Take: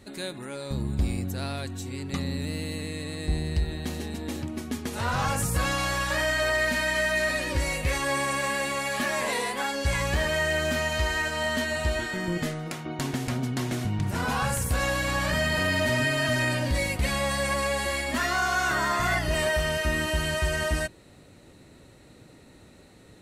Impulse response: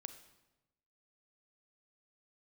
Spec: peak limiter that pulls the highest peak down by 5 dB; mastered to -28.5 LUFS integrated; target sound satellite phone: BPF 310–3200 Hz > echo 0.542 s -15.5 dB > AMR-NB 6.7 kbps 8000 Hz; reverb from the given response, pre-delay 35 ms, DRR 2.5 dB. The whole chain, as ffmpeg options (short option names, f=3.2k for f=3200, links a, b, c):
-filter_complex "[0:a]alimiter=limit=-20.5dB:level=0:latency=1,asplit=2[a][b];[1:a]atrim=start_sample=2205,adelay=35[c];[b][c]afir=irnorm=-1:irlink=0,volume=2.5dB[d];[a][d]amix=inputs=2:normalize=0,highpass=310,lowpass=3.2k,aecho=1:1:542:0.168,volume=3dB" -ar 8000 -c:a libopencore_amrnb -b:a 6700